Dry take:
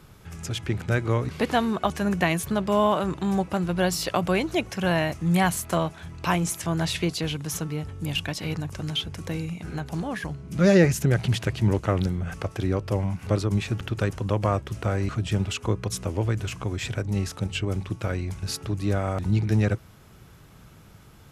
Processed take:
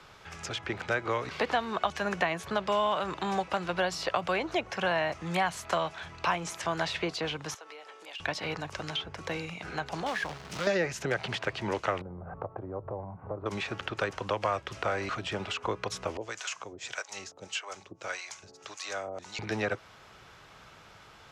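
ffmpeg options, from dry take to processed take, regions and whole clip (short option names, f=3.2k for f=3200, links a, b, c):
-filter_complex "[0:a]asettb=1/sr,asplit=3[a][b][c];[a]atrim=end=7.544[d];[b]atrim=start=7.54:end=8.2,asetpts=PTS-STARTPTS,afade=t=in:d=0.004:c=qsin,afade=t=out:st=0.656:d=0.004:c=qsin,highpass=f=400:w=0.5412,highpass=f=400:w=1.3066,acompressor=threshold=-46dB:ratio=4:attack=3.2:release=140:knee=1:detection=peak[e];[c]atrim=start=8.196[f];[d][e]acrossfade=d=0.004:c1=hsin:c2=qsin[g];[g][f]acrossfade=d=0.004:c1=qsin:c2=hsin,asettb=1/sr,asplit=3[h][i][j];[h]atrim=end=10.064[k];[i]atrim=start=10.06:end=10.67,asetpts=PTS-STARTPTS,afade=t=in:d=0.004:c=qsin,afade=t=out:st=0.606:d=0.004:c=qsin,highshelf=f=4.7k:g=6,acompressor=threshold=-29dB:ratio=3:attack=3.2:release=140:knee=1:detection=peak,acrusher=bits=2:mode=log:mix=0:aa=0.000001[l];[j]atrim=start=10.666[m];[k][l]acrossfade=d=0.004:c1=hsin:c2=qsin[n];[n][m]acrossfade=d=0.004:c1=qsin:c2=hsin,asettb=1/sr,asplit=3[o][p][q];[o]atrim=end=12.014[r];[p]atrim=start=12.01:end=13.46,asetpts=PTS-STARTPTS,afade=t=in:d=0.004:c=qsin,afade=t=out:st=1.446:d=0.004:c=qsin,lowpass=f=1k:w=0.5412,lowpass=f=1k:w=1.3066,equalizer=f=120:t=o:w=0.94:g=7,acompressor=threshold=-27dB:ratio=4:attack=3.2:release=140:knee=1:detection=peak[s];[q]atrim=start=13.456[t];[r][s]acrossfade=d=0.004:c1=hsin:c2=qsin[u];[u][t]acrossfade=d=0.004:c1=qsin:c2=hsin,asettb=1/sr,asplit=3[v][w][x];[v]atrim=end=16.174[y];[w]atrim=start=16.17:end=19.39,asetpts=PTS-STARTPTS,afade=t=in:d=0.004:c=qsin,afade=t=out:st=3.216:d=0.004:c=qsin,highpass=f=570:p=1,equalizer=f=6.7k:t=o:w=0.89:g=14,acrossover=split=590[z][aa];[z]aeval=exprs='val(0)*(1-1/2+1/2*cos(2*PI*1.7*n/s))':c=same[ab];[aa]aeval=exprs='val(0)*(1-1/2-1/2*cos(2*PI*1.7*n/s))':c=same[ac];[ab][ac]amix=inputs=2:normalize=0[ad];[x]atrim=start=19.386[ae];[y][ad]acrossfade=d=0.004:c1=hsin:c2=qsin[af];[af][ae]acrossfade=d=0.004:c1=qsin:c2=hsin,acrossover=split=490 6300:gain=0.158 1 0.0891[ag][ah][ai];[ag][ah][ai]amix=inputs=3:normalize=0,acrossover=split=180|1700[aj][ak][al];[aj]acompressor=threshold=-49dB:ratio=4[am];[ak]acompressor=threshold=-32dB:ratio=4[an];[al]acompressor=threshold=-42dB:ratio=4[ao];[am][an][ao]amix=inputs=3:normalize=0,volume=5dB"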